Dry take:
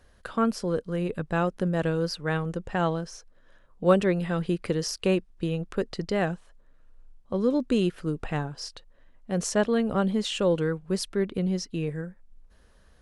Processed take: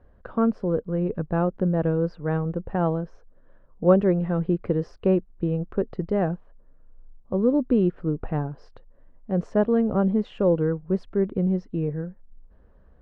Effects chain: Bessel low-pass 770 Hz, order 2; trim +4 dB

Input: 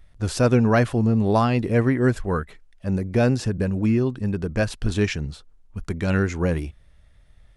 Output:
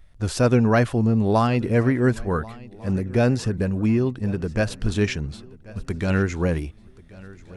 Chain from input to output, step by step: shuffle delay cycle 1448 ms, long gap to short 3:1, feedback 33%, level -21.5 dB

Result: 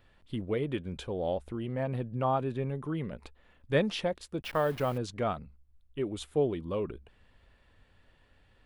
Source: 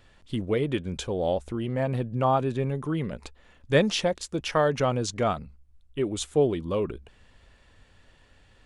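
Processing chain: 4.42–4.98 s: send-on-delta sampling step -36.5 dBFS; peaking EQ 6.6 kHz -10 dB 0.95 oct; trim -5.5 dB

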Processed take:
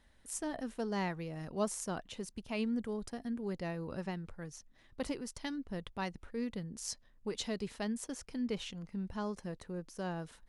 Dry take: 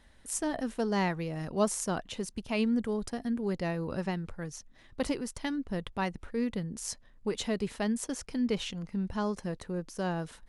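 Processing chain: 5.23–7.85 s: dynamic bell 4.9 kHz, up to +6 dB, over -52 dBFS, Q 1.3; trim -6.5 dB

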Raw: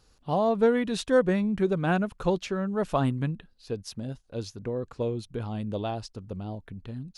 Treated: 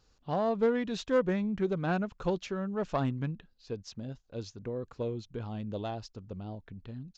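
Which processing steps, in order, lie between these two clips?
self-modulated delay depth 0.082 ms; resampled via 16 kHz; trim -5 dB

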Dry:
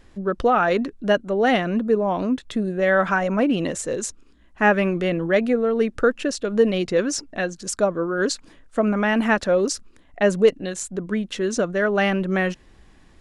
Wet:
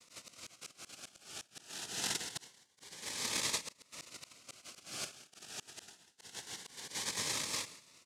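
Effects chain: octave divider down 2 oct, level -2 dB; bass shelf 480 Hz +6 dB; expander -38 dBFS; on a send: feedback delay 81 ms, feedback 59%, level -22 dB; on the sum: plain phase-vocoder stretch 0.61×; Chebyshev shaper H 7 -14 dB, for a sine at -1.5 dBFS; peak limiter -13 dBFS, peak gain reduction 10 dB; compression 3:1, threshold -44 dBFS, peak gain reduction 18.5 dB; tone controls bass -2 dB, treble -6 dB; noise-vocoded speech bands 1; slow attack 508 ms; Shepard-style phaser rising 0.25 Hz; trim +9 dB

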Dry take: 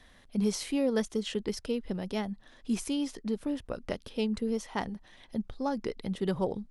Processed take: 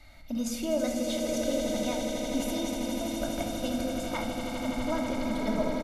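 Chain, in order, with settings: comb 1.6 ms, depth 53%; in parallel at +1 dB: compression, threshold -39 dBFS, peak gain reduction 15 dB; on the sum: tape speed +15%; echo with a slow build-up 82 ms, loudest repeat 8, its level -8 dB; simulated room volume 2300 m³, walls furnished, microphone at 2.7 m; trim -7 dB

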